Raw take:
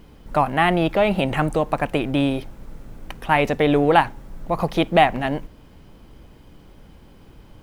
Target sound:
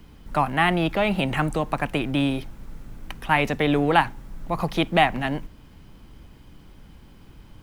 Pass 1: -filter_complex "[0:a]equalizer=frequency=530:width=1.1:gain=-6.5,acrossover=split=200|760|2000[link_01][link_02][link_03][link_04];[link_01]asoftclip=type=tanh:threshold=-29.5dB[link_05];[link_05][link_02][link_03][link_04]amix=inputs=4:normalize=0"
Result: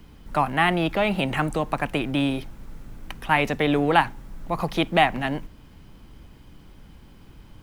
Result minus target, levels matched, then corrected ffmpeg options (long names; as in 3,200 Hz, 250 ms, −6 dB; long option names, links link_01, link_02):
soft clipping: distortion +7 dB
-filter_complex "[0:a]equalizer=frequency=530:width=1.1:gain=-6.5,acrossover=split=200|760|2000[link_01][link_02][link_03][link_04];[link_01]asoftclip=type=tanh:threshold=-23.5dB[link_05];[link_05][link_02][link_03][link_04]amix=inputs=4:normalize=0"